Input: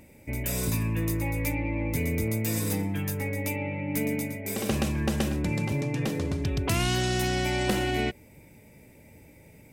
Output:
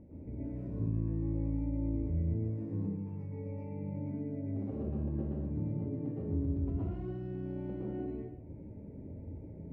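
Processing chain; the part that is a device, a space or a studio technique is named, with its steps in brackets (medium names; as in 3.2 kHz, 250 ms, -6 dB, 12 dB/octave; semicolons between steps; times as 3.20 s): 2.73–3.97 s: rippled EQ curve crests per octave 0.82, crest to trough 13 dB; television next door (compression 5:1, threshold -41 dBFS, peak gain reduction 17 dB; low-pass 420 Hz 12 dB/octave; reverberation RT60 0.65 s, pre-delay 107 ms, DRR -6.5 dB)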